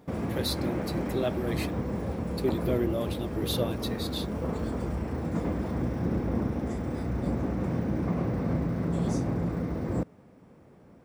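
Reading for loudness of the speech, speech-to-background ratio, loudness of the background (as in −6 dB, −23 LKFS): −33.5 LKFS, −2.0 dB, −31.5 LKFS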